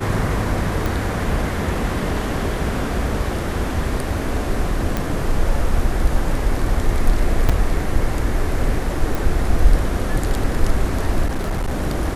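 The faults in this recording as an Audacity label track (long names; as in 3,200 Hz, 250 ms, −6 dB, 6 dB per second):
0.860000	0.860000	click
4.970000	4.970000	click
7.490000	7.500000	drop-out 5.1 ms
9.150000	9.150000	click
11.260000	11.800000	clipping −17.5 dBFS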